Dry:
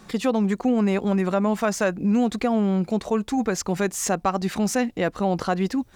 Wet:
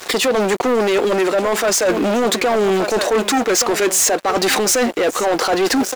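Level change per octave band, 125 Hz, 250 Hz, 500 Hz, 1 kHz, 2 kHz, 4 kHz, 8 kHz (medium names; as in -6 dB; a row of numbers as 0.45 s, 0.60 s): -4.5 dB, +0.5 dB, +9.5 dB, +7.5 dB, +10.5 dB, +16.0 dB, +14.0 dB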